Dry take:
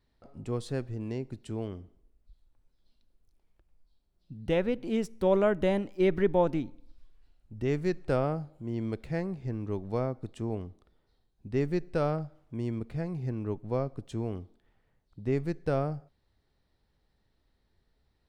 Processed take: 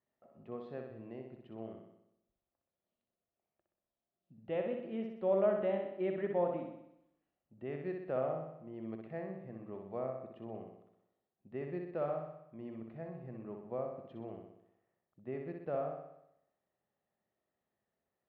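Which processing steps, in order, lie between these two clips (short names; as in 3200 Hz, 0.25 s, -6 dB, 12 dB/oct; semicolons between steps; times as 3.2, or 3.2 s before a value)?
speaker cabinet 280–2300 Hz, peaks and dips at 290 Hz -9 dB, 440 Hz -7 dB, 630 Hz +3 dB, 930 Hz -7 dB, 1500 Hz -9 dB, 2200 Hz -7 dB; flutter echo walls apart 10.7 m, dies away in 0.8 s; gain -5 dB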